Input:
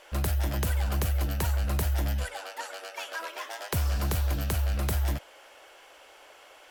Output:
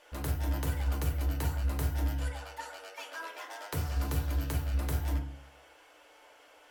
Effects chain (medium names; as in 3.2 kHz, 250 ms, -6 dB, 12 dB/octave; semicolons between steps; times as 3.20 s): FDN reverb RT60 0.53 s, low-frequency decay 1.35×, high-frequency decay 0.4×, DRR 0.5 dB; trim -8 dB